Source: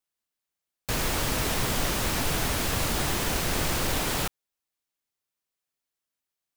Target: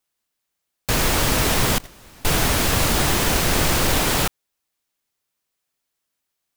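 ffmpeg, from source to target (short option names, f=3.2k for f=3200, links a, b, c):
-filter_complex "[0:a]asettb=1/sr,asplit=3[a][b][c];[a]atrim=end=1.784[d];[b]atrim=start=1.78:end=2.25,asetpts=PTS-STARTPTS,afade=t=in:d=0.004:c=qsin,afade=t=out:st=0.466:d=0.004:c=qsin,agate=range=-27dB:threshold=-21dB:ratio=16:detection=peak[e];[c]atrim=start=2.246[f];[d][e]acrossfade=d=0.004:c1=hsin:c2=qsin[g];[g][f]acrossfade=d=0.004:c1=qsin:c2=hsin,volume=8dB"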